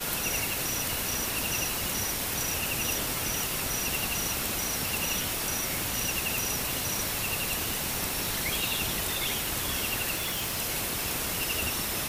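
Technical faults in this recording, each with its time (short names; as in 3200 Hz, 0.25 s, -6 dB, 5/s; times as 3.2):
10.14–10.6 clipped -27 dBFS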